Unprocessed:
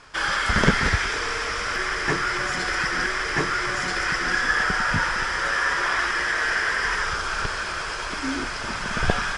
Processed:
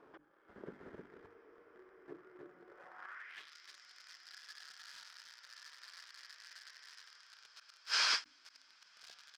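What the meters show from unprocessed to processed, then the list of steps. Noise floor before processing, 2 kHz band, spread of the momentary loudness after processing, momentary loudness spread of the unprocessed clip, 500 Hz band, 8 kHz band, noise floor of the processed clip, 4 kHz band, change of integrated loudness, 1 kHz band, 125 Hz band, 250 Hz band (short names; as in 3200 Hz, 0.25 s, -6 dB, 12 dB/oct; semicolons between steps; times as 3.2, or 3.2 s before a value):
-30 dBFS, -25.0 dB, 23 LU, 7 LU, -26.5 dB, -16.5 dB, -67 dBFS, -12.5 dB, -16.0 dB, -26.0 dB, under -35 dB, -29.5 dB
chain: on a send: echo 0.308 s -4.5 dB; on the sum: flipped gate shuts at -17 dBFS, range -31 dB; high shelf 4200 Hz -11.5 dB; in parallel at -4.5 dB: requantised 8-bit, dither none; on the sum: AGC gain up to 11.5 dB; notches 50/100/150/200/250/300 Hz; band-pass sweep 350 Hz -> 4800 Hz, 2.66–3.54; low shelf 350 Hz -5.5 dB; ending taper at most 300 dB/s; gain -1.5 dB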